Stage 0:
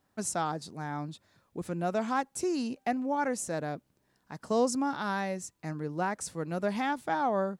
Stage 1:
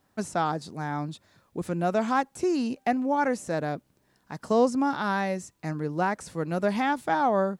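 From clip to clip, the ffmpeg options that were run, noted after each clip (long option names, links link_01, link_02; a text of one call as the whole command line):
ffmpeg -i in.wav -filter_complex "[0:a]acrossover=split=3200[link_01][link_02];[link_02]acompressor=threshold=-46dB:ratio=4:attack=1:release=60[link_03];[link_01][link_03]amix=inputs=2:normalize=0,volume=5dB" out.wav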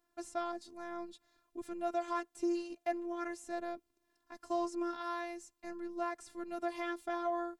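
ffmpeg -i in.wav -af "afftfilt=real='hypot(re,im)*cos(PI*b)':imag='0':win_size=512:overlap=0.75,volume=-7.5dB" out.wav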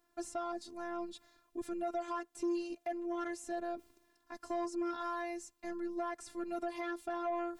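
ffmpeg -i in.wav -af "areverse,acompressor=mode=upward:threshold=-51dB:ratio=2.5,areverse,alimiter=level_in=4.5dB:limit=-24dB:level=0:latency=1:release=261,volume=-4.5dB,asoftclip=type=tanh:threshold=-32dB,volume=4dB" out.wav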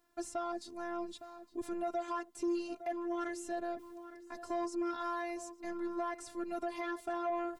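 ffmpeg -i in.wav -filter_complex "[0:a]asplit=2[link_01][link_02];[link_02]adelay=861,lowpass=frequency=1700:poles=1,volume=-12dB,asplit=2[link_03][link_04];[link_04]adelay=861,lowpass=frequency=1700:poles=1,volume=0.38,asplit=2[link_05][link_06];[link_06]adelay=861,lowpass=frequency=1700:poles=1,volume=0.38,asplit=2[link_07][link_08];[link_08]adelay=861,lowpass=frequency=1700:poles=1,volume=0.38[link_09];[link_01][link_03][link_05][link_07][link_09]amix=inputs=5:normalize=0,volume=1dB" out.wav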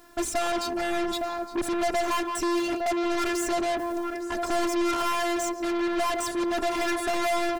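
ffmpeg -i in.wav -filter_complex "[0:a]asplit=2[link_01][link_02];[link_02]adelay=170,highpass=300,lowpass=3400,asoftclip=type=hard:threshold=-36dB,volume=-12dB[link_03];[link_01][link_03]amix=inputs=2:normalize=0,aeval=exprs='0.0447*sin(PI/2*2*val(0)/0.0447)':channel_layout=same,aeval=exprs='0.0473*(cos(1*acos(clip(val(0)/0.0473,-1,1)))-cos(1*PI/2))+0.0106*(cos(5*acos(clip(val(0)/0.0473,-1,1)))-cos(5*PI/2))+0.00335*(cos(6*acos(clip(val(0)/0.0473,-1,1)))-cos(6*PI/2))+0.00531*(cos(8*acos(clip(val(0)/0.0473,-1,1)))-cos(8*PI/2))':channel_layout=same,volume=5.5dB" out.wav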